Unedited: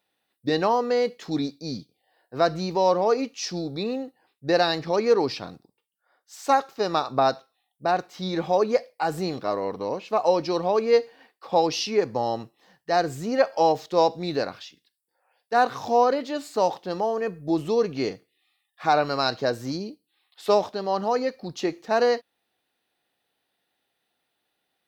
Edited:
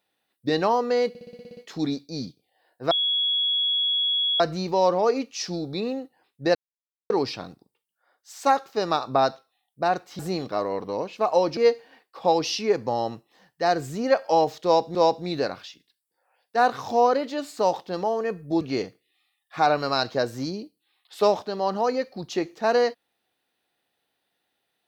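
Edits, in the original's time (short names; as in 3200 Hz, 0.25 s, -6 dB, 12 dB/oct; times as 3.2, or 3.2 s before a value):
1.09 stutter 0.06 s, 9 plays
2.43 add tone 3350 Hz -20.5 dBFS 1.49 s
4.58–5.13 mute
8.22–9.11 cut
10.49–10.85 cut
13.92–14.23 loop, 2 plays
17.58–17.88 cut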